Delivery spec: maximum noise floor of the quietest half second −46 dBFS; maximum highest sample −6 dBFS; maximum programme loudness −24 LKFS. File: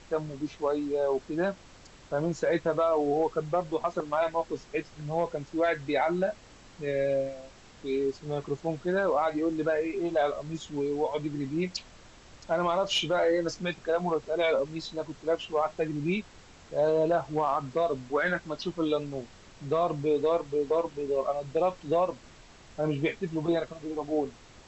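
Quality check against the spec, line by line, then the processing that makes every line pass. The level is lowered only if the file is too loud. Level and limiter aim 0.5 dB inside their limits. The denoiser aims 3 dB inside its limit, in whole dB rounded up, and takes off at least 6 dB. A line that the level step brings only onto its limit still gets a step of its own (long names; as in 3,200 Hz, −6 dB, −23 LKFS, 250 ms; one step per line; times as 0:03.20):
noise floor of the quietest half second −52 dBFS: in spec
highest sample −16.0 dBFS: in spec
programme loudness −29.5 LKFS: in spec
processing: no processing needed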